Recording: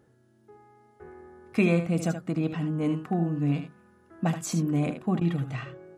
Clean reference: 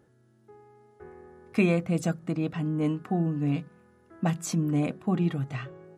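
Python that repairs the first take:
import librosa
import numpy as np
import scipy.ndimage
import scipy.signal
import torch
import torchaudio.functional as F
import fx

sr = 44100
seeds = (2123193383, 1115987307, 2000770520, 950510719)

y = fx.fix_interpolate(x, sr, at_s=(5.2,), length_ms=10.0)
y = fx.fix_echo_inverse(y, sr, delay_ms=76, level_db=-8.5)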